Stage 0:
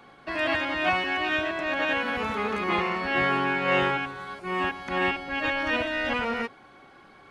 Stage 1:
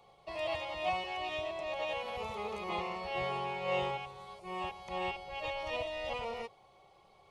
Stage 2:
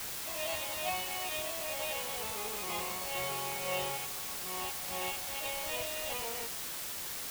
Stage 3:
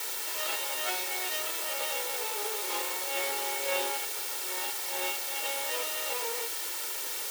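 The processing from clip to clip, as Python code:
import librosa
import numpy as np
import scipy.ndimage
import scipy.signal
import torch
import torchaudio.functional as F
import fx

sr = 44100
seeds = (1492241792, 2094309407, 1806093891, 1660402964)

y1 = fx.fixed_phaser(x, sr, hz=650.0, stages=4)
y1 = y1 * librosa.db_to_amplitude(-6.0)
y2 = fx.high_shelf(y1, sr, hz=3000.0, db=10.0)
y2 = fx.quant_dither(y2, sr, seeds[0], bits=6, dither='triangular')
y2 = y2 * librosa.db_to_amplitude(-4.0)
y3 = fx.lower_of_two(y2, sr, delay_ms=2.2)
y3 = scipy.signal.sosfilt(scipy.signal.butter(4, 310.0, 'highpass', fs=sr, output='sos'), y3)
y3 = y3 * librosa.db_to_amplitude(6.0)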